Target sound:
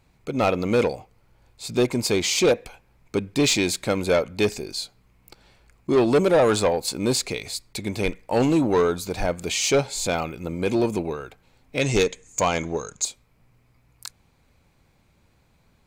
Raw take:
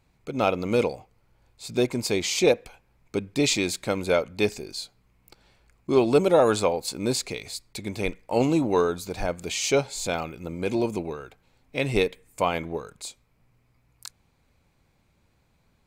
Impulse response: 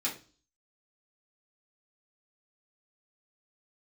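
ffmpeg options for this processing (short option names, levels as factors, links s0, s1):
-filter_complex "[0:a]asplit=2[s0][s1];[s1]asoftclip=type=hard:threshold=0.133,volume=0.668[s2];[s0][s2]amix=inputs=2:normalize=0,asettb=1/sr,asplit=3[s3][s4][s5];[s3]atrim=end=11.814[s6];[s4]atrim=start=11.81:end=13.05,asetpts=PTS-STARTPTS,afade=t=in:d=0.004:c=qsin,afade=t=out:st=1.236:d=0.004:c=qsin,lowpass=f=6700:t=q:w=13[s7];[s5]atrim=start=13.046[s8];[s6][s7]acrossfade=d=0.004:c1=hsin:c2=qsin[s9];[s9][s8]acrossfade=d=0.004:c1=qsin:c2=hsin,asoftclip=type=tanh:threshold=0.266"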